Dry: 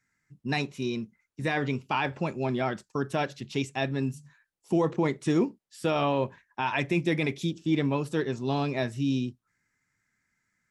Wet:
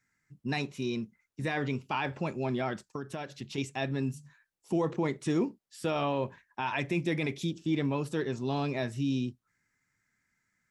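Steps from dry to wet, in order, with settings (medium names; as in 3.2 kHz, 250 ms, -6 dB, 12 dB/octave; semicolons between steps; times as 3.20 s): in parallel at 0 dB: peak limiter -24 dBFS, peak gain reduction 8.5 dB; 2.82–3.58 s: on the sum: compression, threshold -27 dBFS, peak gain reduction 7.5 dB; trim -7 dB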